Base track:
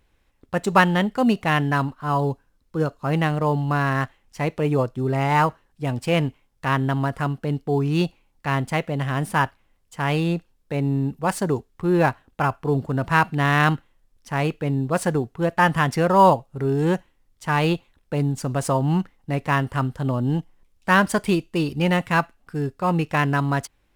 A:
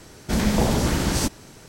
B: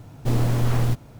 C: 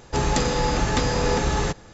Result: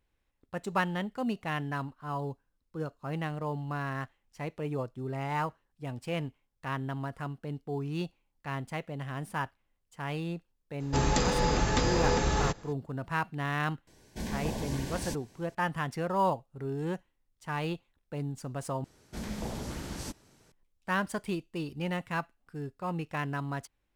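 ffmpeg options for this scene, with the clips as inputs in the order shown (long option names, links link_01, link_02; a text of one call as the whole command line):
ffmpeg -i bed.wav -i cue0.wav -i cue1.wav -i cue2.wav -filter_complex "[1:a]asplit=2[link_01][link_02];[0:a]volume=-13dB[link_03];[link_01]asuperstop=centerf=1300:order=12:qfactor=5[link_04];[link_02]aresample=32000,aresample=44100[link_05];[link_03]asplit=2[link_06][link_07];[link_06]atrim=end=18.844[link_08];[link_05]atrim=end=1.68,asetpts=PTS-STARTPTS,volume=-16.5dB[link_09];[link_07]atrim=start=20.516[link_10];[3:a]atrim=end=1.93,asetpts=PTS-STARTPTS,volume=-5dB,afade=type=in:duration=0.004:curve=hsin,afade=type=out:start_time=1.926:duration=0.004:curve=hsin,adelay=10800[link_11];[link_04]atrim=end=1.68,asetpts=PTS-STARTPTS,volume=-14.5dB,afade=type=in:duration=0.004:curve=hsin,afade=type=out:start_time=1.676:duration=0.004:curve=hsin,adelay=13870[link_12];[link_08][link_09]acrossfade=duration=0.004:curve1=hsin:curve2=hsin[link_13];[link_13][link_10]acrossfade=duration=0.004:curve1=hsin:curve2=hsin[link_14];[link_14][link_11][link_12]amix=inputs=3:normalize=0" out.wav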